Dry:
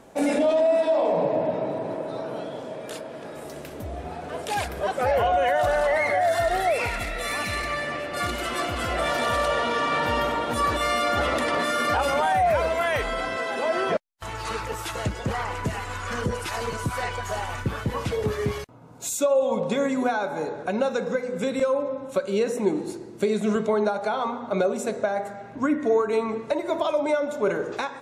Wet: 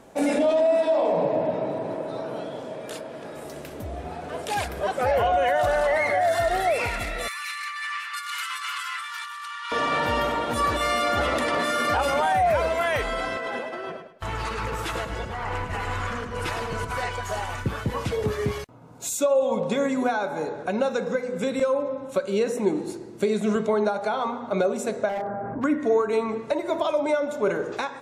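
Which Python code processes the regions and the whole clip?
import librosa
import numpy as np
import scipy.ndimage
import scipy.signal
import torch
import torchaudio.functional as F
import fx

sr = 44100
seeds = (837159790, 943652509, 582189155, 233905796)

y = fx.chain(x, sr, fx.steep_highpass(hz=1000.0, slope=72),
    fx.over_compress(threshold_db=-33.0, ratio=-1.0), at=(7.28, 9.72))
y = fx.chain(y, sr, fx.bass_treble(bass_db=3, treble_db=-7),
    fx.over_compress(threshold_db=-31.0, ratio=-1.0),
    fx.echo_feedback(ms=105, feedback_pct=32, wet_db=-7.0), at=(13.36, 16.98))
y = fx.chain(y, sr, fx.lowpass(hz=1400.0, slope=24),
    fx.clip_hard(threshold_db=-26.0),
    fx.env_flatten(amount_pct=70), at=(25.09, 25.64))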